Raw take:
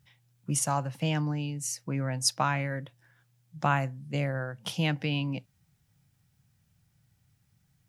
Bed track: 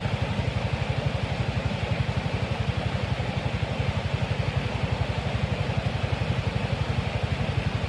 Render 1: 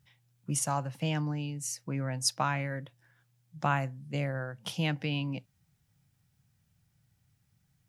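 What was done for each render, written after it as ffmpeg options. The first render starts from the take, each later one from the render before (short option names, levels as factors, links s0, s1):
-af "volume=0.75"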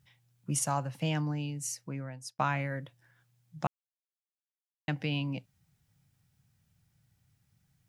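-filter_complex "[0:a]asplit=4[s0][s1][s2][s3];[s0]atrim=end=2.39,asetpts=PTS-STARTPTS,afade=t=out:st=1.65:d=0.74[s4];[s1]atrim=start=2.39:end=3.67,asetpts=PTS-STARTPTS,afade=t=in:d=0.004:c=hsin,afade=t=out:st=1.276:d=0.004:c=hsin[s5];[s2]atrim=start=3.67:end=4.88,asetpts=PTS-STARTPTS,volume=0[s6];[s3]atrim=start=4.88,asetpts=PTS-STARTPTS,afade=t=in:d=0.004:c=hsin[s7];[s4][s5][s6][s7]concat=n=4:v=0:a=1"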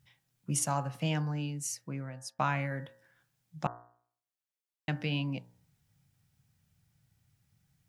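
-af "bandreject=f=59.82:t=h:w=4,bandreject=f=119.64:t=h:w=4,bandreject=f=179.46:t=h:w=4,bandreject=f=239.28:t=h:w=4,bandreject=f=299.1:t=h:w=4,bandreject=f=358.92:t=h:w=4,bandreject=f=418.74:t=h:w=4,bandreject=f=478.56:t=h:w=4,bandreject=f=538.38:t=h:w=4,bandreject=f=598.2:t=h:w=4,bandreject=f=658.02:t=h:w=4,bandreject=f=717.84:t=h:w=4,bandreject=f=777.66:t=h:w=4,bandreject=f=837.48:t=h:w=4,bandreject=f=897.3:t=h:w=4,bandreject=f=957.12:t=h:w=4,bandreject=f=1016.94:t=h:w=4,bandreject=f=1076.76:t=h:w=4,bandreject=f=1136.58:t=h:w=4,bandreject=f=1196.4:t=h:w=4,bandreject=f=1256.22:t=h:w=4,bandreject=f=1316.04:t=h:w=4,bandreject=f=1375.86:t=h:w=4,bandreject=f=1435.68:t=h:w=4,bandreject=f=1495.5:t=h:w=4,bandreject=f=1555.32:t=h:w=4,bandreject=f=1615.14:t=h:w=4,bandreject=f=1674.96:t=h:w=4,bandreject=f=1734.78:t=h:w=4,bandreject=f=1794.6:t=h:w=4,bandreject=f=1854.42:t=h:w=4,bandreject=f=1914.24:t=h:w=4"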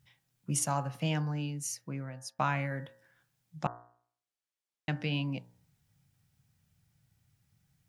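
-filter_complex "[0:a]asettb=1/sr,asplit=3[s0][s1][s2];[s0]atrim=end=0.634[s3];[s1]atrim=start=0.63:end=2.36,asetpts=PTS-STARTPTS,afade=t=in:d=0.004:c=qsin,afade=t=out:st=1.726:d=0.004:c=qsin,bandreject=f=7900:w=11[s4];[s2]atrim=start=2.356[s5];[s3][s4]acrossfade=d=0.004:c1=hsin:c2=qsin[s6];[s6][s5]acrossfade=d=0.004:c1=qsin:c2=hsin,asettb=1/sr,asplit=3[s7][s8][s9];[s7]atrim=end=3.594[s10];[s8]atrim=start=3.59:end=5.13,asetpts=PTS-STARTPTS,afade=t=in:d=0.004:c=qsin,afade=t=out:st=1.536:d=0.004:c=qsin,lowpass=10000[s11];[s9]atrim=start=5.126[s12];[s10][s11]acrossfade=d=0.004:c1=hsin:c2=qsin[s13];[s13][s12]acrossfade=d=0.004:c1=qsin:c2=hsin"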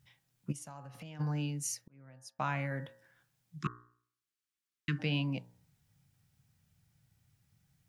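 -filter_complex "[0:a]asplit=3[s0][s1][s2];[s0]afade=t=out:st=0.51:d=0.02[s3];[s1]acompressor=threshold=0.00501:ratio=5:attack=3.2:release=140:knee=1:detection=peak,afade=t=in:st=0.51:d=0.02,afade=t=out:st=1.19:d=0.02[s4];[s2]afade=t=in:st=1.19:d=0.02[s5];[s3][s4][s5]amix=inputs=3:normalize=0,asplit=3[s6][s7][s8];[s6]afade=t=out:st=3.58:d=0.02[s9];[s7]asuperstop=centerf=680:order=20:qfactor=1.1,afade=t=in:st=3.58:d=0.02,afade=t=out:st=4.98:d=0.02[s10];[s8]afade=t=in:st=4.98:d=0.02[s11];[s9][s10][s11]amix=inputs=3:normalize=0,asplit=2[s12][s13];[s12]atrim=end=1.88,asetpts=PTS-STARTPTS,afade=t=out:st=1.876:d=0.004:c=hsin[s14];[s13]atrim=start=1.88,asetpts=PTS-STARTPTS,afade=t=in:d=0.96[s15];[s14][s15]concat=n=2:v=0:a=1"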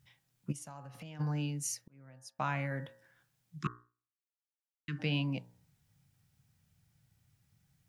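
-filter_complex "[0:a]asplit=3[s0][s1][s2];[s0]atrim=end=3.93,asetpts=PTS-STARTPTS,afade=t=out:st=3.71:d=0.22:silence=0.188365[s3];[s1]atrim=start=3.93:end=4.82,asetpts=PTS-STARTPTS,volume=0.188[s4];[s2]atrim=start=4.82,asetpts=PTS-STARTPTS,afade=t=in:d=0.22:silence=0.188365[s5];[s3][s4][s5]concat=n=3:v=0:a=1"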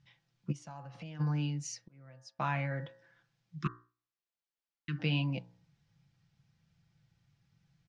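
-af "lowpass=f=5700:w=0.5412,lowpass=f=5700:w=1.3066,aecho=1:1:5.9:0.44"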